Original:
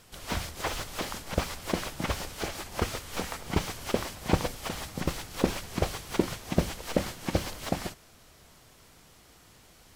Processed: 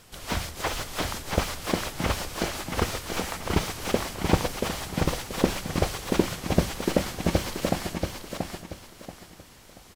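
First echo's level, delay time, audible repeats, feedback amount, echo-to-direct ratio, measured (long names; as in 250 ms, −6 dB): −5.0 dB, 682 ms, 3, 31%, −4.5 dB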